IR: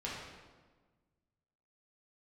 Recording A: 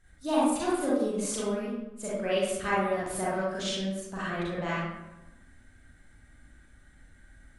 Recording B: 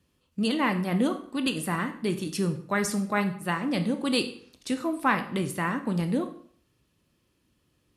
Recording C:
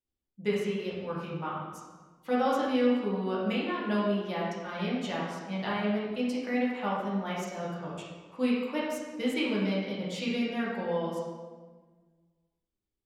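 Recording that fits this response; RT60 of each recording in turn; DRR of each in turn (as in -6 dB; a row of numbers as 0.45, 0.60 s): C; 1.0, 0.55, 1.4 s; -8.5, 7.5, -7.0 dB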